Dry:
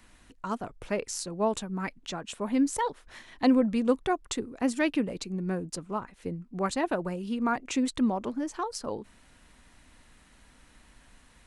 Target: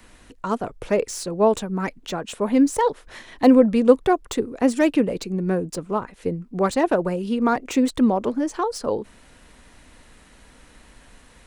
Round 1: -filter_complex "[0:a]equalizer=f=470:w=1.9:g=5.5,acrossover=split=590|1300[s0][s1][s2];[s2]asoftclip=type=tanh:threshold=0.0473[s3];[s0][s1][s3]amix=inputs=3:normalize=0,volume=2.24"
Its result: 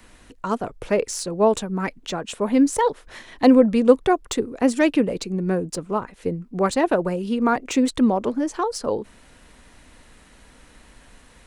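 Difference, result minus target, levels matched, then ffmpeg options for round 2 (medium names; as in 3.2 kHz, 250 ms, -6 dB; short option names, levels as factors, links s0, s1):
saturation: distortion -8 dB
-filter_complex "[0:a]equalizer=f=470:w=1.9:g=5.5,acrossover=split=590|1300[s0][s1][s2];[s2]asoftclip=type=tanh:threshold=0.02[s3];[s0][s1][s3]amix=inputs=3:normalize=0,volume=2.24"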